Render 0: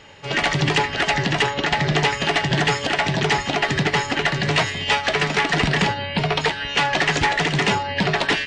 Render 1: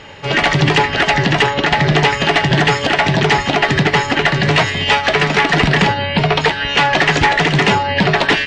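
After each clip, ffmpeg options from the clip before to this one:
ffmpeg -i in.wav -filter_complex "[0:a]asplit=2[link_01][link_02];[link_02]alimiter=limit=-17dB:level=0:latency=1:release=261,volume=0.5dB[link_03];[link_01][link_03]amix=inputs=2:normalize=0,highshelf=frequency=6900:gain=-10.5,volume=3.5dB" out.wav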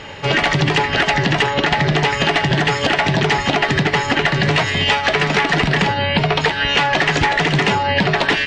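ffmpeg -i in.wav -af "acompressor=threshold=-16dB:ratio=6,volume=3dB" out.wav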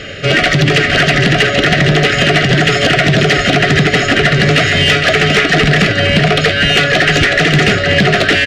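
ffmpeg -i in.wav -af "asuperstop=centerf=950:order=12:qfactor=2.2,aecho=1:1:460:0.447,asoftclip=type=tanh:threshold=-10.5dB,volume=7.5dB" out.wav

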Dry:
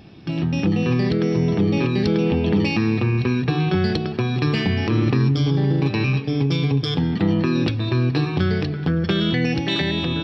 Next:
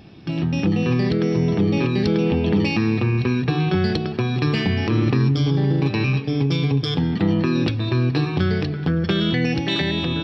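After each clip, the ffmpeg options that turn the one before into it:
ffmpeg -i in.wav -af anull out.wav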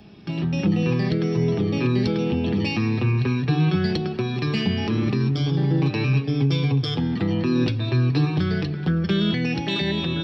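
ffmpeg -i in.wav -filter_complex "[0:a]acrossover=split=210|350|2400[link_01][link_02][link_03][link_04];[link_03]alimiter=limit=-21dB:level=0:latency=1:release=210[link_05];[link_01][link_02][link_05][link_04]amix=inputs=4:normalize=0,flanger=delay=4.8:depth=3.6:regen=46:speed=0.21:shape=sinusoidal,volume=2dB" out.wav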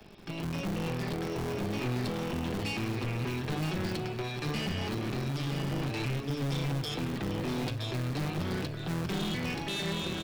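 ffmpeg -i in.wav -filter_complex "[0:a]acrossover=split=100|330|1100[link_01][link_02][link_03][link_04];[link_02]acrusher=bits=5:dc=4:mix=0:aa=0.000001[link_05];[link_01][link_05][link_03][link_04]amix=inputs=4:normalize=0,aeval=exprs='(tanh(25.1*val(0)+0.35)-tanh(0.35))/25.1':channel_layout=same,aecho=1:1:969:0.422,volume=-2.5dB" out.wav

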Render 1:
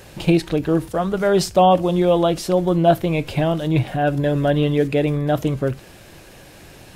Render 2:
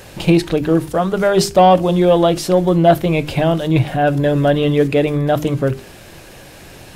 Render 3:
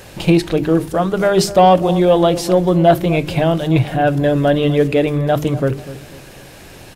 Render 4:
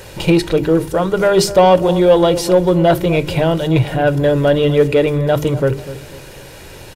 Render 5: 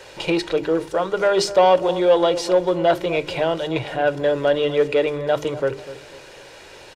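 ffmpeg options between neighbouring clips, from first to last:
ffmpeg -i in.wav -af "bandreject=frequency=50:width_type=h:width=6,bandreject=frequency=100:width_type=h:width=6,bandreject=frequency=150:width_type=h:width=6,bandreject=frequency=200:width_type=h:width=6,bandreject=frequency=250:width_type=h:width=6,bandreject=frequency=300:width_type=h:width=6,bandreject=frequency=350:width_type=h:width=6,bandreject=frequency=400:width_type=h:width=6,acontrast=25" out.wav
ffmpeg -i in.wav -filter_complex "[0:a]asplit=2[link_01][link_02];[link_02]adelay=247,lowpass=frequency=890:poles=1,volume=-13.5dB,asplit=2[link_03][link_04];[link_04]adelay=247,lowpass=frequency=890:poles=1,volume=0.42,asplit=2[link_05][link_06];[link_06]adelay=247,lowpass=frequency=890:poles=1,volume=0.42,asplit=2[link_07][link_08];[link_08]adelay=247,lowpass=frequency=890:poles=1,volume=0.42[link_09];[link_01][link_03][link_05][link_07][link_09]amix=inputs=5:normalize=0" out.wav
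ffmpeg -i in.wav -filter_complex "[0:a]aecho=1:1:2.1:0.38,asplit=2[link_01][link_02];[link_02]asoftclip=type=tanh:threshold=-14dB,volume=-8dB[link_03];[link_01][link_03]amix=inputs=2:normalize=0,volume=-1dB" out.wav
ffmpeg -i in.wav -filter_complex "[0:a]acrossover=split=340 7800:gain=0.2 1 0.126[link_01][link_02][link_03];[link_01][link_02][link_03]amix=inputs=3:normalize=0,volume=-3.5dB" out.wav

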